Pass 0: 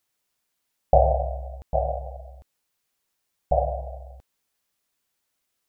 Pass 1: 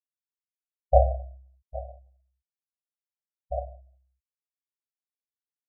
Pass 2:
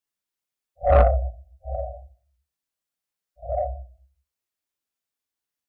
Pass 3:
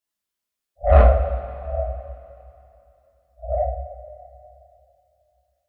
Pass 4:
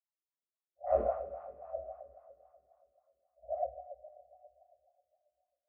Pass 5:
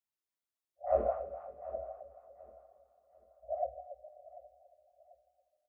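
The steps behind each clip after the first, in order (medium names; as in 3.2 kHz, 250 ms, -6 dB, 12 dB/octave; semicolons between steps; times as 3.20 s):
low-pass 1 kHz 12 dB/octave; spectral contrast expander 2.5:1
phase randomisation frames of 200 ms; saturation -17.5 dBFS, distortion -10 dB; trim +8 dB
two-slope reverb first 0.4 s, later 3 s, from -16 dB, DRR -1.5 dB; trim -1 dB
wah-wah 3.7 Hz 340–1000 Hz, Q 3.4; trim -7 dB
feedback delay 741 ms, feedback 35%, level -18 dB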